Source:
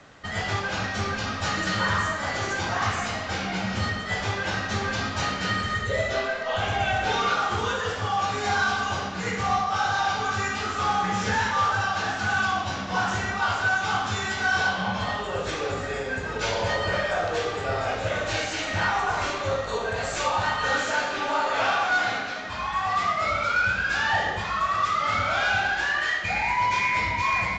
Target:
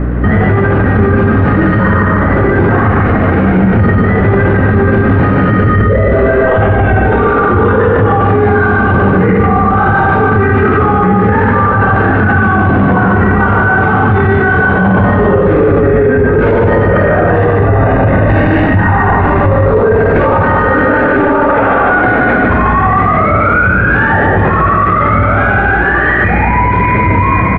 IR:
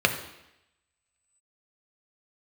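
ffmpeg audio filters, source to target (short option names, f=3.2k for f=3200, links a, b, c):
-filter_complex "[0:a]lowpass=f=1.8k:w=0.5412,lowpass=f=1.8k:w=1.3066,aecho=1:1:148|296|444|592|740|888:0.596|0.28|0.132|0.0618|0.0291|0.0137,acompressor=threshold=-26dB:ratio=6,asettb=1/sr,asplit=3[a][b][c];[a]atrim=end=17.304[d];[b]atrim=start=17.3:end=19.66,asetpts=PTS-STARTPTS,afade=t=in:d=0.004:c=qsin,afade=t=out:st=2.356:d=0.004:c=qsin,aecho=1:1:1.1:0.48,atrim=end_sample=104076[e];[c]atrim=start=19.656[f];[d][e]acrossfade=d=0.004:c1=hsin:c2=qsin[g];[g][f]acrossfade=d=0.004:c1=qsin:c2=hsin,dynaudnorm=f=930:g=13:m=10.5dB,aeval=exprs='val(0)+0.00501*(sin(2*PI*60*n/s)+sin(2*PI*2*60*n/s)/2+sin(2*PI*3*60*n/s)/3+sin(2*PI*4*60*n/s)/4+sin(2*PI*5*60*n/s)/5)':c=same,lowshelf=f=530:t=q:w=1.5:g=9,alimiter=level_in=25.5dB:limit=-1dB:release=50:level=0:latency=1,volume=-1dB"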